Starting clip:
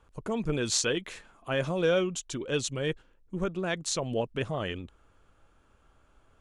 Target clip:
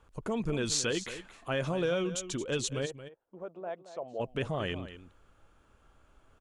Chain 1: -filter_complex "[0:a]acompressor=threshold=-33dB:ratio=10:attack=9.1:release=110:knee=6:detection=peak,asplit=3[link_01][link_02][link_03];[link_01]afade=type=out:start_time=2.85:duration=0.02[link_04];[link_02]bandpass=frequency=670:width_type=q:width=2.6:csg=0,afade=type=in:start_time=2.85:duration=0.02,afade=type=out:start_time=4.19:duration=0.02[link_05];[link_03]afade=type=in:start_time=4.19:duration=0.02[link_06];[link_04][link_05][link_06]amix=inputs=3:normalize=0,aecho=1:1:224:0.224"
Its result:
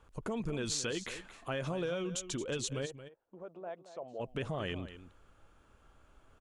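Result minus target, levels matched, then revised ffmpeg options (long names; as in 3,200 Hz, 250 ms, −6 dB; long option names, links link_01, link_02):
downward compressor: peak gain reduction +6.5 dB
-filter_complex "[0:a]acompressor=threshold=-26dB:ratio=10:attack=9.1:release=110:knee=6:detection=peak,asplit=3[link_01][link_02][link_03];[link_01]afade=type=out:start_time=2.85:duration=0.02[link_04];[link_02]bandpass=frequency=670:width_type=q:width=2.6:csg=0,afade=type=in:start_time=2.85:duration=0.02,afade=type=out:start_time=4.19:duration=0.02[link_05];[link_03]afade=type=in:start_time=4.19:duration=0.02[link_06];[link_04][link_05][link_06]amix=inputs=3:normalize=0,aecho=1:1:224:0.224"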